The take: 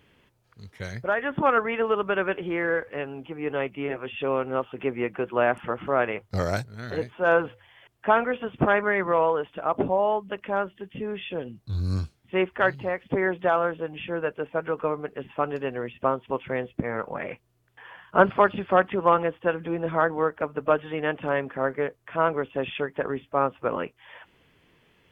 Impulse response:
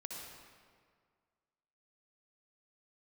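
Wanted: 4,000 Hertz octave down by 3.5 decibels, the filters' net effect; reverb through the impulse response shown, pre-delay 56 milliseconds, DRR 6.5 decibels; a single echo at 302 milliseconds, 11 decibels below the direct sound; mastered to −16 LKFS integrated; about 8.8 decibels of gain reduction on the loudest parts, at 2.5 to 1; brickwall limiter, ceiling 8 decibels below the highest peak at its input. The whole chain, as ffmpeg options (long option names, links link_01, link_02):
-filter_complex "[0:a]equalizer=frequency=4000:width_type=o:gain=-5.5,acompressor=threshold=-26dB:ratio=2.5,alimiter=limit=-19dB:level=0:latency=1,aecho=1:1:302:0.282,asplit=2[link_01][link_02];[1:a]atrim=start_sample=2205,adelay=56[link_03];[link_02][link_03]afir=irnorm=-1:irlink=0,volume=-4.5dB[link_04];[link_01][link_04]amix=inputs=2:normalize=0,volume=15.5dB"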